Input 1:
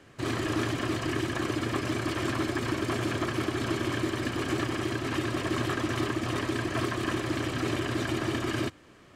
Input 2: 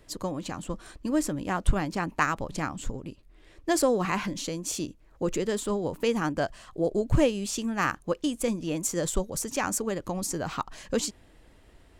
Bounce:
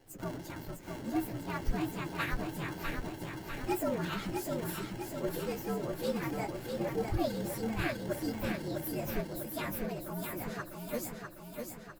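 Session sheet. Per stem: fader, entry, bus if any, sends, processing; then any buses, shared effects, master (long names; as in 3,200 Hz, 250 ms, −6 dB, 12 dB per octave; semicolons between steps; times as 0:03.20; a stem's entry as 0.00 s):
−1.5 dB, 0.00 s, no send, echo send −13.5 dB, decimation without filtering 36×; amplitude modulation by smooth noise; automatic ducking −12 dB, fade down 0.30 s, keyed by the second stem
−6.0 dB, 0.00 s, no send, echo send −5 dB, partials spread apart or drawn together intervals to 118%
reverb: not used
echo: repeating echo 650 ms, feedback 57%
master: no processing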